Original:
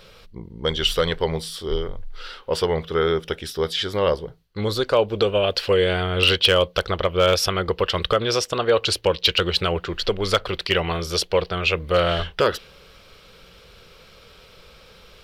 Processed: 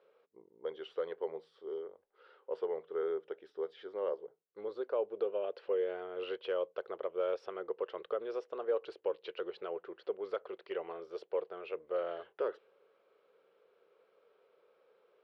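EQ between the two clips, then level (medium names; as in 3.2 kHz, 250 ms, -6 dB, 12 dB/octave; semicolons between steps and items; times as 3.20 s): ladder band-pass 480 Hz, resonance 50%; tilt shelf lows -6.5 dB, about 670 Hz; -5.5 dB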